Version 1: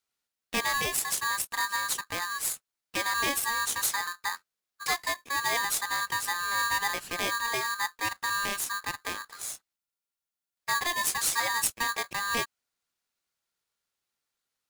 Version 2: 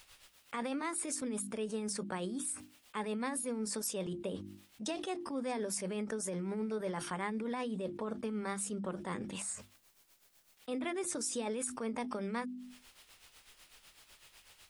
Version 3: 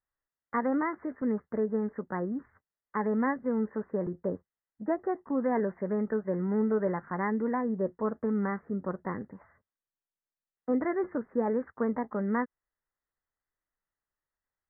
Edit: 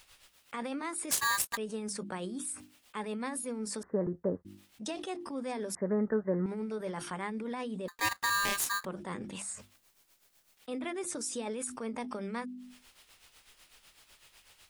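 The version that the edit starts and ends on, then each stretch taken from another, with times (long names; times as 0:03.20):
2
0:01.11–0:01.57: punch in from 1
0:03.83–0:04.45: punch in from 3
0:05.75–0:06.46: punch in from 3
0:07.88–0:08.85: punch in from 1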